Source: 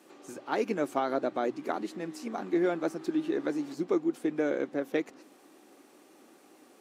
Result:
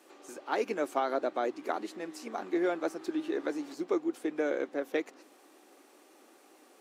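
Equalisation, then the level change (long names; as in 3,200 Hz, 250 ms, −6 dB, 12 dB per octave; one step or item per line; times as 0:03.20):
high-pass filter 340 Hz 12 dB per octave
0.0 dB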